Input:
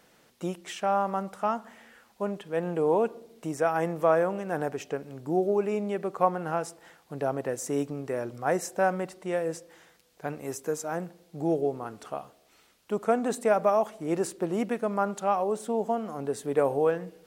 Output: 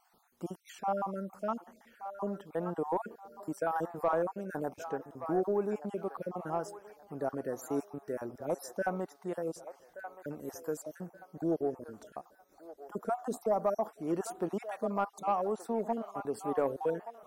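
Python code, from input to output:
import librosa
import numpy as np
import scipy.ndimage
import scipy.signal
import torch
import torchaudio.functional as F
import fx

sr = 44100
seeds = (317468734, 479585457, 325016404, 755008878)

y = fx.spec_dropout(x, sr, seeds[0], share_pct=41)
y = fx.graphic_eq(y, sr, hz=(125, 500, 2000, 4000, 8000), db=(-8, -5, -6, -3, -7))
y = 10.0 ** (-18.5 / 20.0) * np.tanh(y / 10.0 ** (-18.5 / 20.0))
y = fx.peak_eq(y, sr, hz=2800.0, db=fx.steps((0.0, -9.0), (12.15, -15.0), (13.93, -3.0)), octaves=0.94)
y = fx.echo_wet_bandpass(y, sr, ms=1175, feedback_pct=31, hz=1200.0, wet_db=-9.0)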